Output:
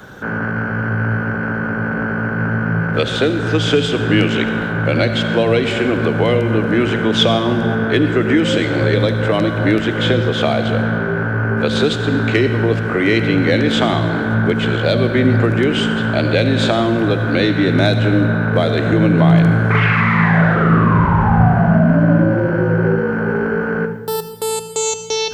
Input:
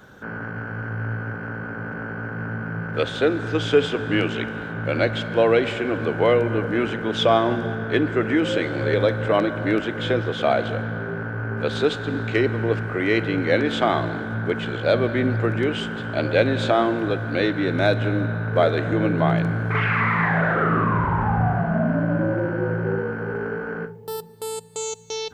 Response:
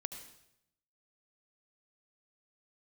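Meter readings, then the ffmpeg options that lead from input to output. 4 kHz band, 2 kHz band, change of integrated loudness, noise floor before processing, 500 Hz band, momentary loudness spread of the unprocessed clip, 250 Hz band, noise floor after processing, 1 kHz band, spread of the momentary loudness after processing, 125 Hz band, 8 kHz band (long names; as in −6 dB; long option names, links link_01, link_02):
+9.5 dB, +6.5 dB, +7.0 dB, −32 dBFS, +4.5 dB, 10 LU, +9.0 dB, −21 dBFS, +4.5 dB, 7 LU, +9.5 dB, can't be measured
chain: -filter_complex "[0:a]acrossover=split=250|3000[link_01][link_02][link_03];[link_02]acompressor=threshold=-26dB:ratio=6[link_04];[link_01][link_04][link_03]amix=inputs=3:normalize=0,asplit=2[link_05][link_06];[1:a]atrim=start_sample=2205[link_07];[link_06][link_07]afir=irnorm=-1:irlink=0,volume=5.5dB[link_08];[link_05][link_08]amix=inputs=2:normalize=0,volume=2.5dB"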